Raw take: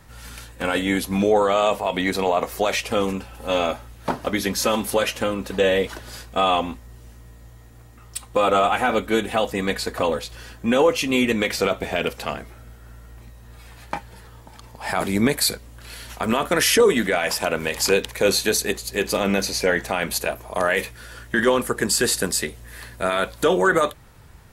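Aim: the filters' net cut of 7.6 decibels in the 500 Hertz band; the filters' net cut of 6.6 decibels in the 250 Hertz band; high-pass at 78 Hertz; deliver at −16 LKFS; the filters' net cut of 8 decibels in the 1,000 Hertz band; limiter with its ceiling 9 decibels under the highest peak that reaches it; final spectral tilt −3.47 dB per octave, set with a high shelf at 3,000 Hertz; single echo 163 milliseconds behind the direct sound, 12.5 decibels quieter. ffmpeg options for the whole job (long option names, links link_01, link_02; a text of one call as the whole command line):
ffmpeg -i in.wav -af "highpass=78,equalizer=frequency=250:width_type=o:gain=-6.5,equalizer=frequency=500:width_type=o:gain=-5,equalizer=frequency=1000:width_type=o:gain=-8,highshelf=frequency=3000:gain=-7.5,alimiter=limit=-20.5dB:level=0:latency=1,aecho=1:1:163:0.237,volume=16dB" out.wav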